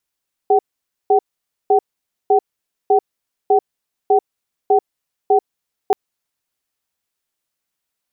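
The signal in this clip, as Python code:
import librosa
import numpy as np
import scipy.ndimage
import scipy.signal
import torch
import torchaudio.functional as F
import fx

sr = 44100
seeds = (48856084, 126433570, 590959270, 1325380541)

y = fx.cadence(sr, length_s=5.43, low_hz=410.0, high_hz=761.0, on_s=0.09, off_s=0.51, level_db=-12.0)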